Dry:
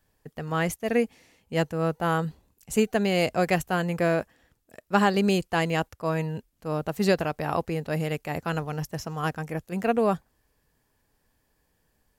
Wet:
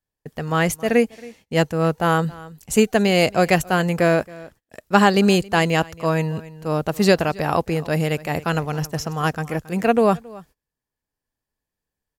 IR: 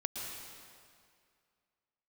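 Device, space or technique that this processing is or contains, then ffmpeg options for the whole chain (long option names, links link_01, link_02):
ducked delay: -filter_complex "[0:a]asplit=3[link_01][link_02][link_03];[link_02]adelay=273,volume=-2dB[link_04];[link_03]apad=whole_len=549436[link_05];[link_04][link_05]sidechaincompress=threshold=-43dB:ratio=12:attack=49:release=784[link_06];[link_01][link_06]amix=inputs=2:normalize=0,agate=range=-24dB:threshold=-56dB:ratio=16:detection=peak,equalizer=frequency=5700:width=0.63:gain=2.5,volume=6.5dB"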